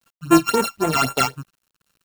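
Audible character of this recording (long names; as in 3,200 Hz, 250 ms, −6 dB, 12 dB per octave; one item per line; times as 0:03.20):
a buzz of ramps at a fixed pitch in blocks of 32 samples
phaser sweep stages 8, 3.8 Hz, lowest notch 470–4,800 Hz
a quantiser's noise floor 10 bits, dither none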